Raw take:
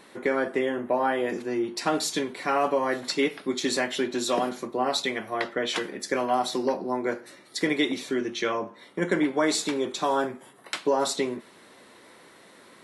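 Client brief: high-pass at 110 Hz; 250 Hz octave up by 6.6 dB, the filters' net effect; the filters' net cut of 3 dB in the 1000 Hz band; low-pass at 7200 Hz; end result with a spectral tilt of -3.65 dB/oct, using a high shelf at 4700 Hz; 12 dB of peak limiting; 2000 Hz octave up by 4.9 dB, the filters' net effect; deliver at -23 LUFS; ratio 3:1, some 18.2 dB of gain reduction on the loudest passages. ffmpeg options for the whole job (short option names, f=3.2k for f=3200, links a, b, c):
-af "highpass=110,lowpass=7.2k,equalizer=f=250:t=o:g=8.5,equalizer=f=1k:t=o:g=-6.5,equalizer=f=2k:t=o:g=8,highshelf=f=4.7k:g=-3.5,acompressor=threshold=-41dB:ratio=3,volume=19.5dB,alimiter=limit=-13dB:level=0:latency=1"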